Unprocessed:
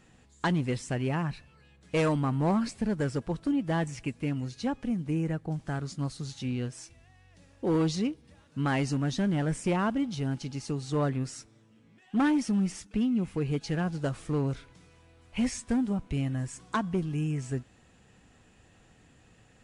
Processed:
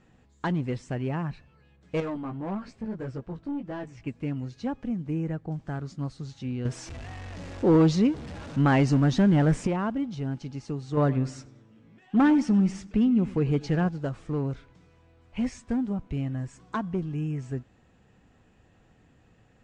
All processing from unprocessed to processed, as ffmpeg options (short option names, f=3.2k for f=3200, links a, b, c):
-filter_complex "[0:a]asettb=1/sr,asplit=3[a][b][c];[a]atrim=end=2.004[d];[b]atrim=start=2:end=4.07,asetpts=PTS-STARTPTS,afade=t=in:d=0.004:c=qsin,afade=t=out:st=2.066:d=0.004:c=qsin,flanger=delay=15:depth=3.1:speed=1.7,highshelf=f=8.5k:g=-10,aeval=exprs='(tanh(22.4*val(0)+0.15)-tanh(0.15))/22.4':c=same[e];[c]atrim=start=4.066[f];[d][e]acrossfade=d=0.004:c1=hsin:c2=qsin[g];[g][f]acrossfade=d=0.004:c1=qsin:c2=hsin,asettb=1/sr,asplit=3[h][i][j];[h]atrim=end=6.654[k];[i]atrim=start=6.65:end=9.67,asetpts=PTS-STARTPTS,afade=t=in:d=0.004:c=qsin,afade=t=out:st=3.016:d=0.004:c=qsin,aeval=exprs='val(0)+0.5*0.00891*sgn(val(0))':c=same,acontrast=77[l];[j]atrim=start=9.666[m];[k][l]acrossfade=d=0.004:c1=hsin:c2=qsin[n];[n][m]acrossfade=d=0.004:c1=qsin:c2=hsin,asettb=1/sr,asplit=3[o][p][q];[o]atrim=end=10.974[r];[p]atrim=start=10.97:end=13.89,asetpts=PTS-STARTPTS,afade=t=in:d=0.004:c=qsin,afade=t=out:st=2.916:d=0.004:c=qsin,acontrast=31,asplit=2[s][t];[t]adelay=98,lowpass=f=4.1k:p=1,volume=-19dB,asplit=2[u][v];[v]adelay=98,lowpass=f=4.1k:p=1,volume=0.48,asplit=2[w][x];[x]adelay=98,lowpass=f=4.1k:p=1,volume=0.48,asplit=2[y][z];[z]adelay=98,lowpass=f=4.1k:p=1,volume=0.48[aa];[s][u][w][y][aa]amix=inputs=5:normalize=0,atrim=end_sample=128772[ab];[q]atrim=start=13.886[ac];[r][ab]acrossfade=d=0.004:c1=hsin:c2=qsin[ad];[ad][ac]acrossfade=d=0.004:c1=qsin:c2=hsin,lowpass=f=7.9k:w=0.5412,lowpass=f=7.9k:w=1.3066,highshelf=f=2.4k:g=-9.5"